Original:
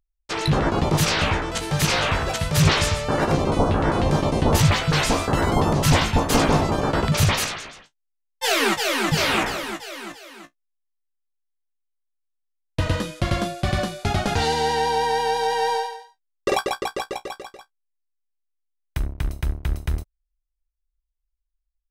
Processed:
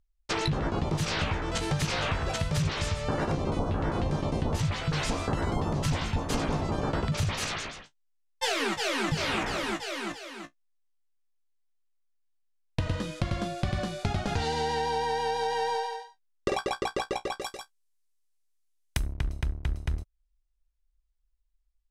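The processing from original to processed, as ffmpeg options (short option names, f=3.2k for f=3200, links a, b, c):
-filter_complex "[0:a]asplit=3[a][b][c];[a]afade=t=out:st=17.41:d=0.02[d];[b]aemphasis=mode=production:type=75kf,afade=t=in:st=17.41:d=0.02,afade=t=out:st=19.16:d=0.02[e];[c]afade=t=in:st=19.16:d=0.02[f];[d][e][f]amix=inputs=3:normalize=0,lowpass=8.9k,lowshelf=f=210:g=5,acompressor=threshold=-26dB:ratio=6"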